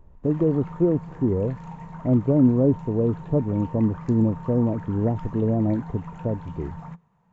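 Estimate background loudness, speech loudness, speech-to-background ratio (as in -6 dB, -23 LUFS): -39.0 LUFS, -23.5 LUFS, 15.5 dB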